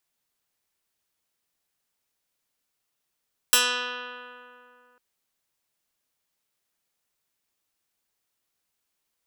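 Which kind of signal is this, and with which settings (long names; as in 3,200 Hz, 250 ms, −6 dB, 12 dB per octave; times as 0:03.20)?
Karplus-Strong string B3, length 1.45 s, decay 2.71 s, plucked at 0.11, medium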